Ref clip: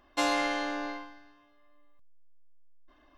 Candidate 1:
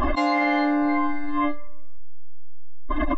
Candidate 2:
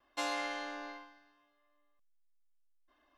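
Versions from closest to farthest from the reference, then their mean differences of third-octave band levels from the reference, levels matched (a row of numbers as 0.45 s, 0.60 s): 2, 1; 2.0 dB, 10.5 dB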